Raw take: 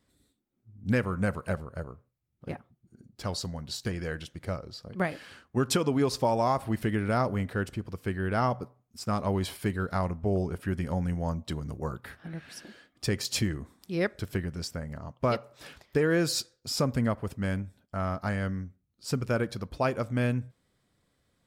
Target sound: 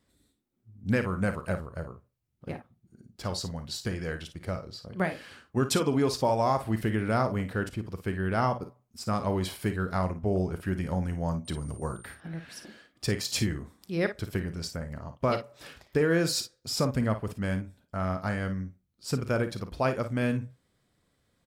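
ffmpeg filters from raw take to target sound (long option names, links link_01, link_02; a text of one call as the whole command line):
ffmpeg -i in.wav -filter_complex "[0:a]asettb=1/sr,asplit=3[link_01][link_02][link_03];[link_01]atrim=end=11.454[link_04];[link_02]atrim=start=11.45:end=12.15,asetpts=PTS-STARTPTS,afade=type=in:duration=0.004:curve=qsin,afade=type=out:start_time=0.696:duration=0.004:curve=qsin,aeval=exprs='val(0)+0.00316*sin(2*PI*8900*n/s)':channel_layout=same[link_05];[link_03]atrim=start=12.146[link_06];[link_04][link_05]acrossfade=duration=0.004:curve1=hsin:curve2=qsin[link_07];[link_07][link_06]acrossfade=duration=0.004:curve1=qsin:curve2=hsin,aecho=1:1:37|54:0.188|0.282" out.wav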